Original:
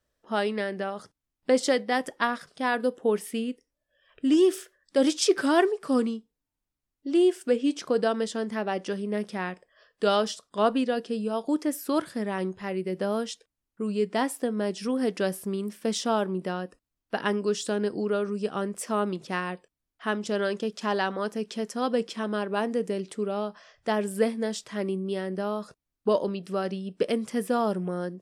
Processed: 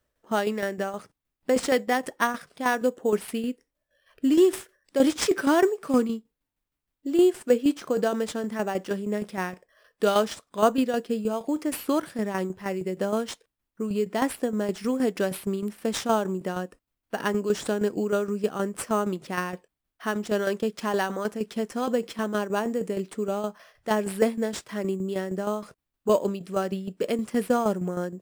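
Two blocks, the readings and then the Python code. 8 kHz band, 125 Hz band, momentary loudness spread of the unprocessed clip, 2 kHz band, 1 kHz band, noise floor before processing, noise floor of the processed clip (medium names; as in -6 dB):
+1.0 dB, +1.5 dB, 9 LU, +0.5 dB, +1.0 dB, under -85 dBFS, -84 dBFS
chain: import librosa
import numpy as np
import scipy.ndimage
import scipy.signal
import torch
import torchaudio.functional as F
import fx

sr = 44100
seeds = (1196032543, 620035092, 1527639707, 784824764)

p1 = fx.high_shelf(x, sr, hz=11000.0, db=8.0)
p2 = fx.sample_hold(p1, sr, seeds[0], rate_hz=7400.0, jitter_pct=0)
p3 = p1 + (p2 * librosa.db_to_amplitude(-4.0))
y = fx.tremolo_shape(p3, sr, shape='saw_down', hz=6.4, depth_pct=60)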